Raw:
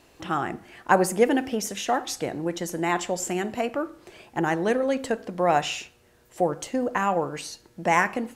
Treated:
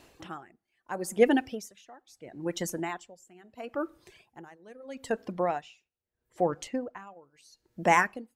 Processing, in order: reverb removal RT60 1.1 s; 5.32–7.07 s: treble shelf 6.1 kHz -10.5 dB; logarithmic tremolo 0.76 Hz, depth 27 dB

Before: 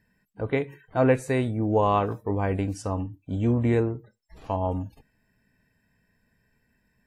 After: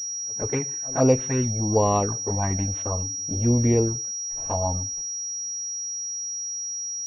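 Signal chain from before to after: touch-sensitive flanger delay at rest 9.7 ms, full sweep at -17.5 dBFS; pre-echo 127 ms -23 dB; class-D stage that switches slowly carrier 5.7 kHz; trim +3 dB

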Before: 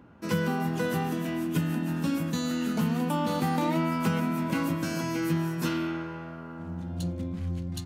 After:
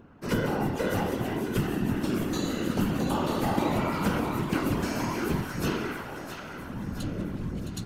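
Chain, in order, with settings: two-band feedback delay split 720 Hz, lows 119 ms, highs 665 ms, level -8 dB; whisper effect

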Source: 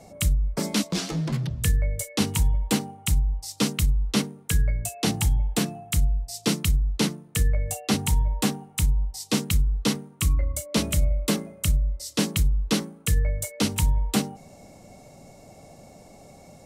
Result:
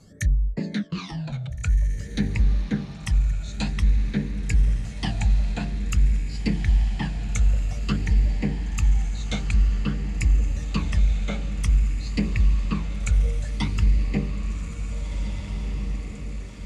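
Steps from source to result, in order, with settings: phase shifter stages 12, 0.51 Hz, lowest notch 330–1400 Hz; low-pass that closes with the level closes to 1.1 kHz, closed at -17.5 dBFS; formant shift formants -3 st; on a send: echo that smears into a reverb 1776 ms, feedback 59%, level -7.5 dB

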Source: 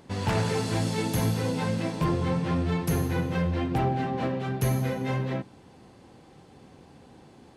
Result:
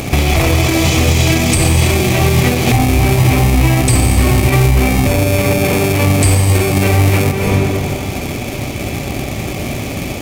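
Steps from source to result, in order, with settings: in parallel at -3.5 dB: sample-and-hold 33×; on the sum: graphic EQ with 31 bands 250 Hz -7 dB, 1 kHz +4 dB, 2 kHz -8 dB, 3.15 kHz +11 dB; on a send at -13 dB: reverberation RT60 1.8 s, pre-delay 120 ms; on the sum: compression, threshold -31 dBFS, peak gain reduction 13 dB; treble shelf 7.1 kHz +11.5 dB; speed mistake 45 rpm record played at 33 rpm; loudness maximiser +28.5 dB; trim -1 dB

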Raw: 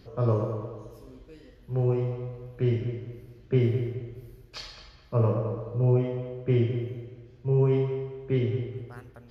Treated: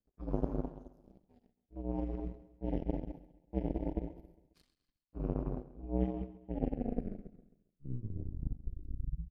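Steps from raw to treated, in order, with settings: tape stop on the ending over 2.92 s; resonant low shelf 440 Hz +10.5 dB, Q 3; reverse; compression 16:1, threshold -22 dBFS, peak gain reduction 18 dB; reverse; frequency shift -65 Hz; power-law waveshaper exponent 3; feedback delay 135 ms, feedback 47%, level -17 dB

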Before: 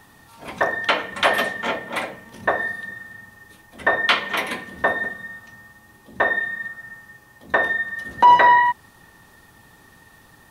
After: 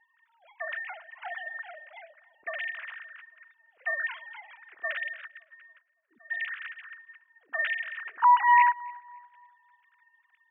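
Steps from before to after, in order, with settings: formants replaced by sine waves; 5.26–6.30 s: trance gate "...x..x.xxxx." 199 bpm -24 dB; filtered feedback delay 281 ms, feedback 44%, low-pass 1.6 kHz, level -21 dB; trim -8.5 dB

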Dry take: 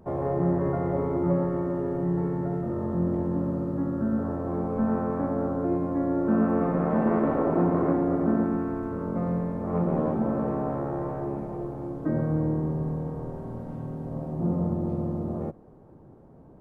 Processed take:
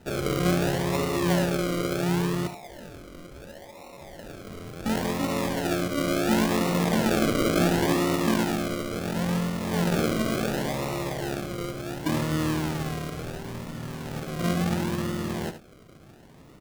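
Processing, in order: 2.47–4.86 s: high-pass 690 Hz 24 dB/octave; decimation with a swept rate 39×, swing 60% 0.71 Hz; delay 74 ms -11 dB

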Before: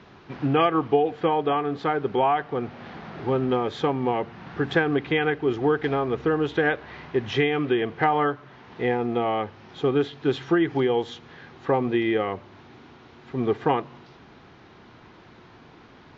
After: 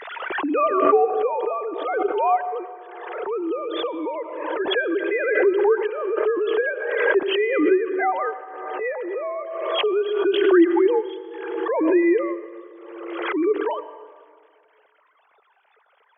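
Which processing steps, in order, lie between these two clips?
formants replaced by sine waves; plate-style reverb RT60 1.9 s, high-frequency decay 0.5×, pre-delay 75 ms, DRR 12.5 dB; swell ahead of each attack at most 36 dB/s

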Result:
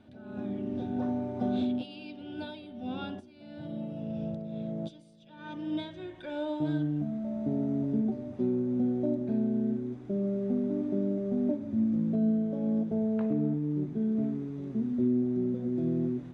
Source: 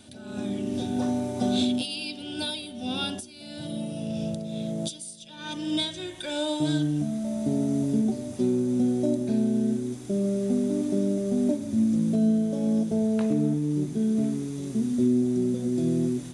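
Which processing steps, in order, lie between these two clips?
low-pass 1.7 kHz 12 dB/octave; trim -4.5 dB

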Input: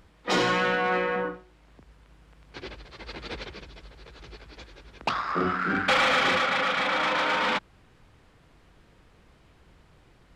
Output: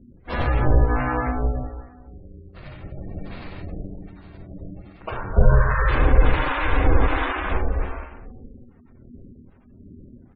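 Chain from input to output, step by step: median filter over 5 samples; reverberation RT60 1.4 s, pre-delay 7 ms, DRR -7 dB; 5.36–7.07 s: waveshaping leveller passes 2; delay 261 ms -4.5 dB; harmonic tremolo 1.3 Hz, depth 70%, crossover 550 Hz; peak limiter -8 dBFS, peak gain reduction 8.5 dB; ring modulator 240 Hz; spectral gate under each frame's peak -15 dB strong; RIAA curve playback; trim -4 dB

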